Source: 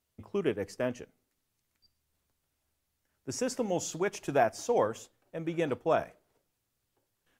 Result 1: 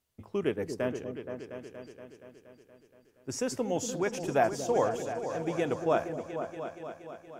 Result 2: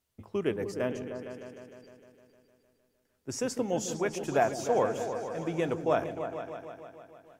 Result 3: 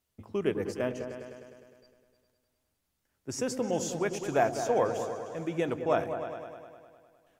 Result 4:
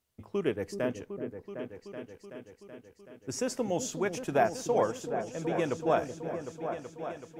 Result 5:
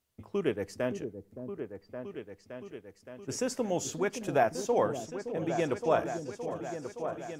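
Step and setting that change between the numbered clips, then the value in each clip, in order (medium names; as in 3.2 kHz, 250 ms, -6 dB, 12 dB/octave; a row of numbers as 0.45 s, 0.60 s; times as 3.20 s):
delay with an opening low-pass, time: 236 ms, 153 ms, 102 ms, 378 ms, 568 ms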